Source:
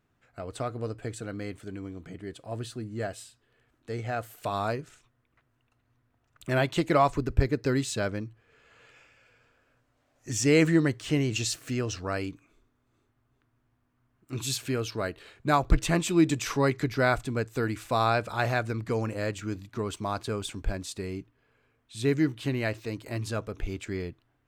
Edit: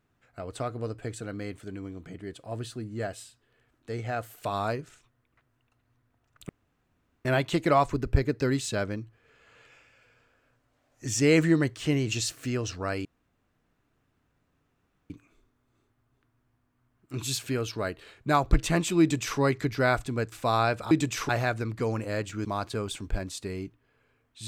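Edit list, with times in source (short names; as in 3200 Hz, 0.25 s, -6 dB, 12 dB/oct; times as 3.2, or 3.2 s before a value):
6.49 insert room tone 0.76 s
12.29 insert room tone 2.05 s
16.2–16.58 copy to 18.38
17.51–17.79 cut
19.54–19.99 cut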